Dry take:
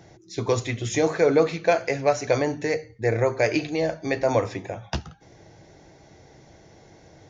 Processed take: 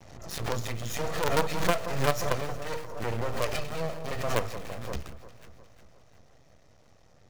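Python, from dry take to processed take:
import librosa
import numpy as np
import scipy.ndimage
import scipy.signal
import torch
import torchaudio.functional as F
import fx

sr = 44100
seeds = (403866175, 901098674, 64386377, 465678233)

p1 = fx.lower_of_two(x, sr, delay_ms=1.6)
p2 = fx.low_shelf(p1, sr, hz=110.0, db=6.0)
p3 = fx.quant_companded(p2, sr, bits=2)
p4 = p2 + F.gain(torch.from_numpy(p3), -9.0).numpy()
p5 = np.maximum(p4, 0.0)
p6 = p5 + fx.echo_alternate(p5, sr, ms=177, hz=1400.0, feedback_pct=71, wet_db=-12.0, dry=0)
p7 = fx.pre_swell(p6, sr, db_per_s=50.0)
y = F.gain(torch.from_numpy(p7), -6.5).numpy()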